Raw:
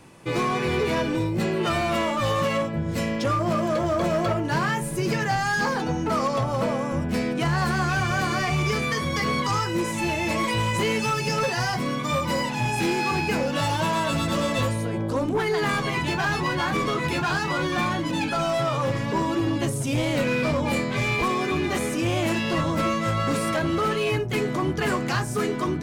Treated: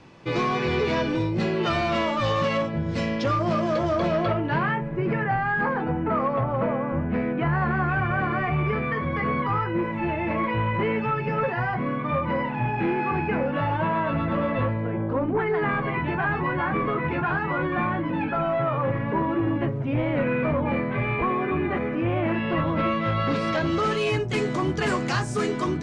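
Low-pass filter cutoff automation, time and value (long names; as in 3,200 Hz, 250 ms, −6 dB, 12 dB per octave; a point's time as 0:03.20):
low-pass filter 24 dB per octave
0:03.91 5,500 Hz
0:04.89 2,200 Hz
0:22.24 2,200 Hz
0:23.20 3,800 Hz
0:24.00 8,300 Hz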